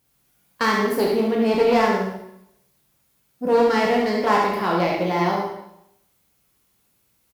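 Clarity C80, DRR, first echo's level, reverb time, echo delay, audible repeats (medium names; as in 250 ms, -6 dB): 4.5 dB, -3.0 dB, -5.0 dB, 0.80 s, 70 ms, 1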